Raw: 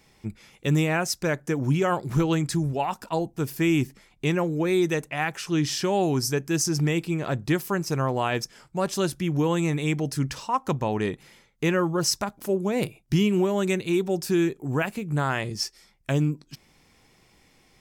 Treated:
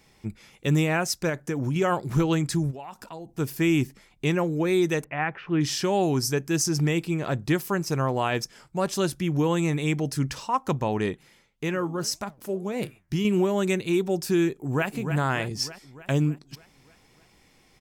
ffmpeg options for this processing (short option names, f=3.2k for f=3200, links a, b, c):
-filter_complex "[0:a]asettb=1/sr,asplit=3[a][b][c];[a]atrim=end=1.294[d];[b]atrim=start=1.29:end=1.76,asetpts=PTS-STARTPTS,afade=t=in:d=0.004:c=qsin,afade=t=out:st=0.466:d=0.004:c=qsin,acompressor=threshold=-23dB:ratio=6:attack=3.2:release=140:knee=1:detection=peak[e];[c]atrim=start=1.756[f];[d][e]acrossfade=d=0.004:c1=hsin:c2=qsin[g];[g][f]acrossfade=d=0.004:c1=qsin:c2=hsin,asplit=3[h][i][j];[h]afade=t=out:st=2.7:d=0.02[k];[i]acompressor=threshold=-38dB:ratio=4:attack=3.2:release=140:knee=1:detection=peak,afade=t=in:st=2.7:d=0.02,afade=t=out:st=3.28:d=0.02[l];[j]afade=t=in:st=3.28:d=0.02[m];[k][l][m]amix=inputs=3:normalize=0,asettb=1/sr,asplit=3[n][o][p];[n]atrim=end=5.044[q];[o]atrim=start=5.04:end=5.61,asetpts=PTS-STARTPTS,afade=t=in:d=0.004:c=qsin,afade=t=out:st=0.566:d=0.004:c=qsin,lowpass=f=2.4k:w=0.5412,lowpass=f=2.4k:w=1.3066[r];[p]atrim=start=5.606[s];[q][r]acrossfade=d=0.004:c1=hsin:c2=qsin[t];[t][s]acrossfade=d=0.004:c1=qsin:c2=hsin,asettb=1/sr,asplit=3[u][v][w];[u]atrim=end=11.134[x];[v]atrim=start=11.13:end=13.25,asetpts=PTS-STARTPTS,afade=t=in:d=0.004:c=qsin,afade=t=out:st=2.116:d=0.004:c=qsin,flanger=delay=4.1:depth=8.3:regen=85:speed=1.8:shape=triangular[y];[w]atrim=start=13.246[z];[x][y]acrossfade=d=0.004:c1=hsin:c2=qsin[aa];[aa][z]acrossfade=d=0.004:c1=qsin:c2=hsin,asplit=2[ab][ac];[ac]afade=t=in:st=14.48:d=0.01,afade=t=out:st=14.88:d=0.01,aecho=0:1:300|600|900|1200|1500|1800|2100|2400:0.398107|0.238864|0.143319|0.0859911|0.0515947|0.0309568|0.0185741|0.0111445[ad];[ab][ad]amix=inputs=2:normalize=0"